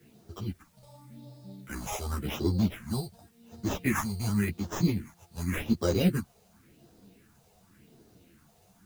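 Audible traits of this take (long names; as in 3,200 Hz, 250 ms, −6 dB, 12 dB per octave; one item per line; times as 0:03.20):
aliases and images of a low sample rate 4,400 Hz, jitter 0%
phaser sweep stages 4, 0.9 Hz, lowest notch 280–2,400 Hz
a quantiser's noise floor 12 bits, dither triangular
a shimmering, thickened sound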